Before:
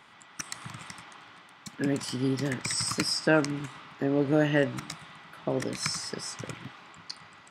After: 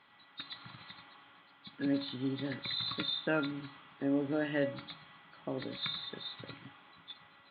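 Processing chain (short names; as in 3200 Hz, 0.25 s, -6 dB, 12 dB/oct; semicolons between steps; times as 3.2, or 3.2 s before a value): nonlinear frequency compression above 3200 Hz 4:1; notches 50/100/150 Hz; resonator 280 Hz, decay 0.34 s, harmonics all, mix 70%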